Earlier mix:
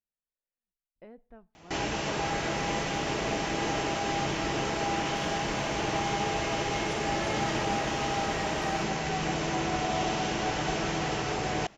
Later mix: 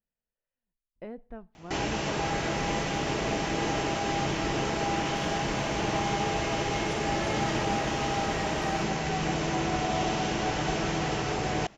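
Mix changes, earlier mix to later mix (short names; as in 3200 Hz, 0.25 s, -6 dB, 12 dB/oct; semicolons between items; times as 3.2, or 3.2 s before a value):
speech +7.5 dB; master: add low shelf 350 Hz +3 dB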